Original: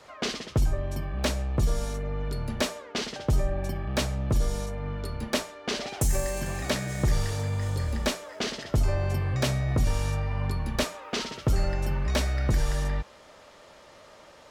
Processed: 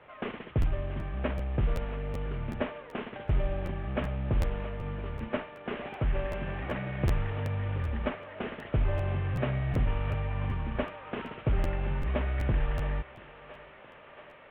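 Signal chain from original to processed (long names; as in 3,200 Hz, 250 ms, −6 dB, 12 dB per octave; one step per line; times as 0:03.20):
variable-slope delta modulation 16 kbit/s
high-frequency loss of the air 88 metres
feedback echo with a high-pass in the loop 677 ms, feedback 81%, high-pass 400 Hz, level −13.5 dB
regular buffer underruns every 0.38 s, samples 512, repeat, from 0:00.61
level −2.5 dB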